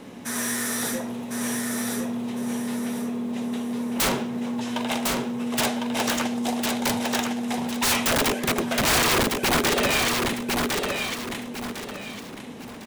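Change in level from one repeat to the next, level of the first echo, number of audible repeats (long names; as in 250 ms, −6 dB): −9.5 dB, −3.5 dB, 3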